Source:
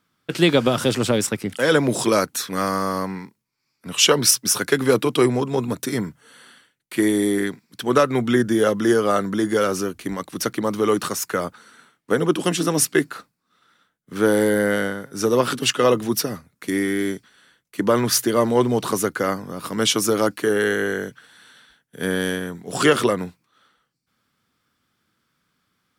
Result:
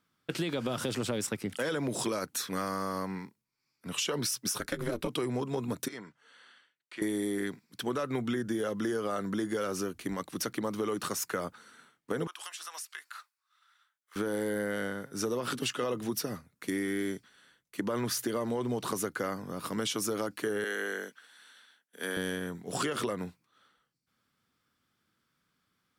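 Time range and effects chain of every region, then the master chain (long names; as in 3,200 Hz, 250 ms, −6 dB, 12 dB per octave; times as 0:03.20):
0:04.58–0:05.08: ring modulation 120 Hz + transient designer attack +10 dB, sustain −1 dB
0:05.88–0:07.02: high-pass filter 900 Hz 6 dB per octave + downward compressor 1.5 to 1, threshold −38 dBFS + high-frequency loss of the air 110 metres
0:12.27–0:14.16: high-pass filter 950 Hz 24 dB per octave + downward compressor 8 to 1, threshold −32 dBFS
0:20.64–0:22.17: Butterworth high-pass 190 Hz + low-shelf EQ 450 Hz −11 dB
whole clip: brickwall limiter −11 dBFS; downward compressor, threshold −22 dBFS; level −6.5 dB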